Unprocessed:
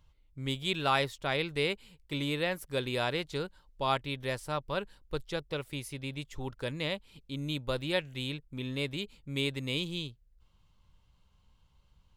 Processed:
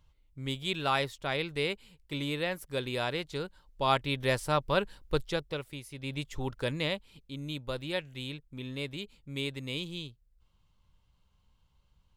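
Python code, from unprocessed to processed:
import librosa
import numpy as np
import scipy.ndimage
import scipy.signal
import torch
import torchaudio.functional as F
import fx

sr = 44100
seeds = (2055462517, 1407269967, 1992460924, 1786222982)

y = fx.gain(x, sr, db=fx.line((3.39, -1.0), (4.32, 6.0), (5.19, 6.0), (5.87, -6.0), (6.15, 3.5), (6.73, 3.5), (7.36, -3.0)))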